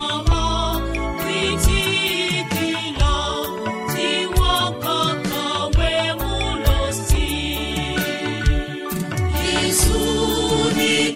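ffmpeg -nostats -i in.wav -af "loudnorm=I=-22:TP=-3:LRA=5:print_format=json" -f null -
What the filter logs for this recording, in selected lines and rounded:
"input_i" : "-19.8",
"input_tp" : "-2.8",
"input_lra" : "1.7",
"input_thresh" : "-29.8",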